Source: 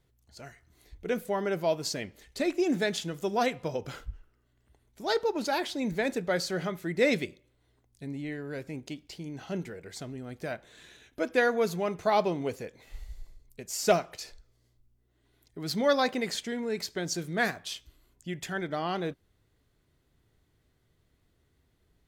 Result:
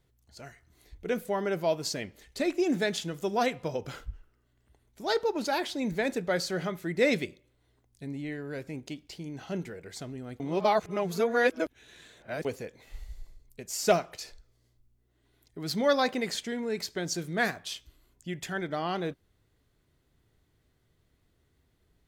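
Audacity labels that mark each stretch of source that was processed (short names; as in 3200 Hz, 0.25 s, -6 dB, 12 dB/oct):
10.400000	12.450000	reverse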